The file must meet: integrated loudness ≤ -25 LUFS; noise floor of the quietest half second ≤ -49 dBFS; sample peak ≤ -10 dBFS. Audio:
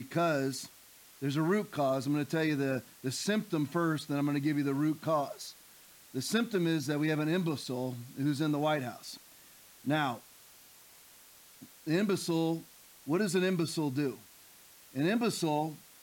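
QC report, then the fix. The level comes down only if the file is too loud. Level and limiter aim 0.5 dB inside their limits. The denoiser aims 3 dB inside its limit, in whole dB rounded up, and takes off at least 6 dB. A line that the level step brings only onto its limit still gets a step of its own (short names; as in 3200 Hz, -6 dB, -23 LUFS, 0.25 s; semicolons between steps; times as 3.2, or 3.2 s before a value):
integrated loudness -32.5 LUFS: OK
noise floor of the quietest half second -57 dBFS: OK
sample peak -16.5 dBFS: OK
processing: none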